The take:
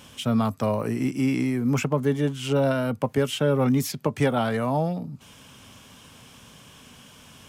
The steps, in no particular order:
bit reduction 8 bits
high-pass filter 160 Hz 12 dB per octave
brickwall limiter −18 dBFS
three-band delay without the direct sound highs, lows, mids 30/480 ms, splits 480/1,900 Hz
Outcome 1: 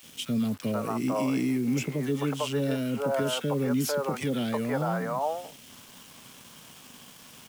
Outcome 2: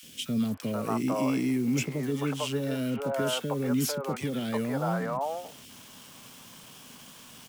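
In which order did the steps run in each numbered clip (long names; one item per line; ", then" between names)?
three-band delay without the direct sound, then brickwall limiter, then high-pass filter, then bit reduction
brickwall limiter, then high-pass filter, then bit reduction, then three-band delay without the direct sound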